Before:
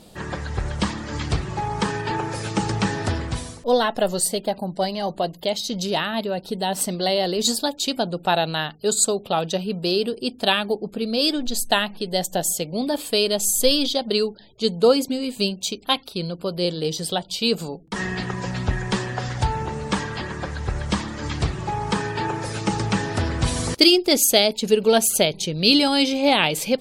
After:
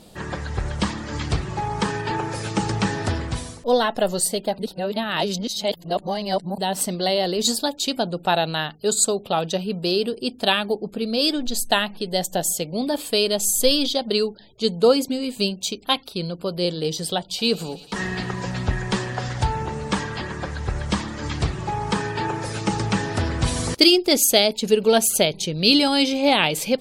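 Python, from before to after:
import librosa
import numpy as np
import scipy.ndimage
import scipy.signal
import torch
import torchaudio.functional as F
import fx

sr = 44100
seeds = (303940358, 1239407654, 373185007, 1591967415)

y = fx.echo_thinned(x, sr, ms=112, feedback_pct=84, hz=420.0, wet_db=-21.0, at=(17.37, 19.5), fade=0.02)
y = fx.edit(y, sr, fx.reverse_span(start_s=4.59, length_s=1.99), tone=tone)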